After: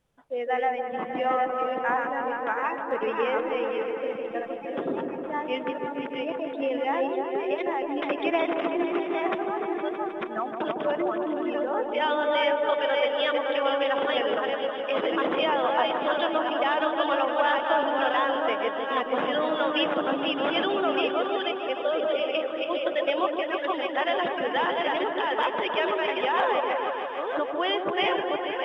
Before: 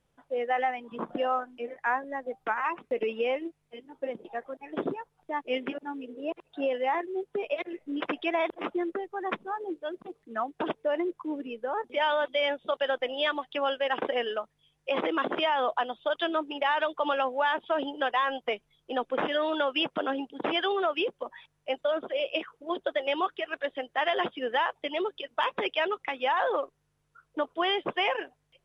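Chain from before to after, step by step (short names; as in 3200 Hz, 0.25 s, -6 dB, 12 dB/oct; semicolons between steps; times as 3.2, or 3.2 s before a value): reverse delay 0.489 s, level -3 dB; on a send: repeats that get brighter 0.155 s, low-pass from 750 Hz, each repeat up 1 oct, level -3 dB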